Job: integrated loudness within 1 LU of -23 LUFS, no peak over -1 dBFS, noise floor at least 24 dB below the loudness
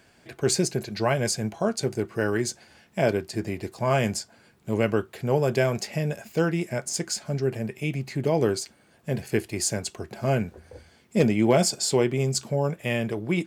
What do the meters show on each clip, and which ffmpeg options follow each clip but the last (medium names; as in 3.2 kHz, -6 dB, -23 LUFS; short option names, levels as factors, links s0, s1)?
loudness -26.0 LUFS; peak level -8.0 dBFS; loudness target -23.0 LUFS
-> -af "volume=1.41"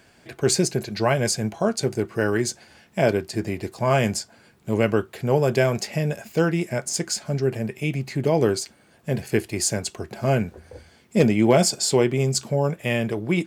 loudness -23.0 LUFS; peak level -5.0 dBFS; noise floor -56 dBFS